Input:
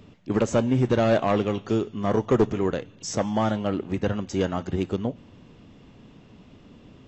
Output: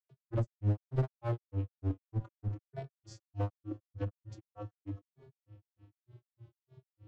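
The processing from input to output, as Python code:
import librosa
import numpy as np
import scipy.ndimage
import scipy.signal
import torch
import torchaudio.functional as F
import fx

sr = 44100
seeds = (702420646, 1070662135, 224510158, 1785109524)

y = fx.vocoder(x, sr, bands=16, carrier='square', carrier_hz=114.0)
y = fx.clip_asym(y, sr, top_db=-26.5, bottom_db=-18.0)
y = fx.rev_schroeder(y, sr, rt60_s=3.0, comb_ms=28, drr_db=15.5)
y = fx.granulator(y, sr, seeds[0], grain_ms=171.0, per_s=3.3, spray_ms=100.0, spread_st=3)
y = y * 10.0 ** (-2.5 / 20.0)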